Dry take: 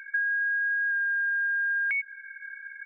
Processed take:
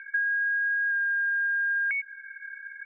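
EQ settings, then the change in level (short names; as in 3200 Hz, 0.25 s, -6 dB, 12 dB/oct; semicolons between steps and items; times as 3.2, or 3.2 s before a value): HPF 1400 Hz 12 dB/oct; LPF 2100 Hz 12 dB/oct; air absorption 230 m; +5.5 dB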